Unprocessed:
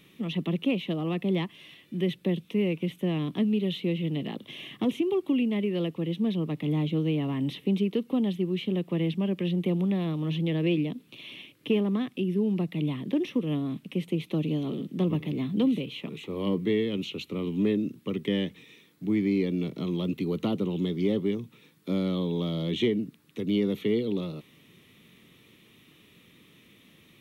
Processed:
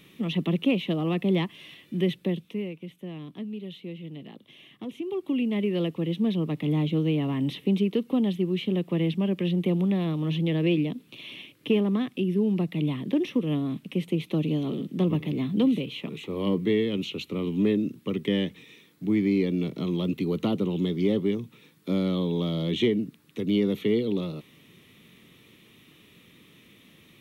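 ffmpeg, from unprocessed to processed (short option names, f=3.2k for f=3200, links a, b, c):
-af "volume=15dB,afade=t=out:st=2:d=0.74:silence=0.223872,afade=t=in:st=4.9:d=0.77:silence=0.251189"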